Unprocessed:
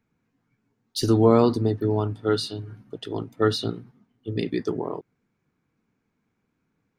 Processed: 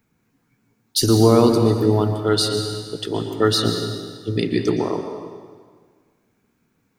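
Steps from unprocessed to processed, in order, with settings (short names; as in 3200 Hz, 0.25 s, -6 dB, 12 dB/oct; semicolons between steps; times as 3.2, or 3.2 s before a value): high shelf 6300 Hz +11.5 dB; in parallel at +1.5 dB: limiter -15 dBFS, peak gain reduction 10 dB; on the sum: plate-style reverb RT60 1.7 s, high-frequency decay 0.9×, pre-delay 0.105 s, DRR 5.5 dB; gain -1 dB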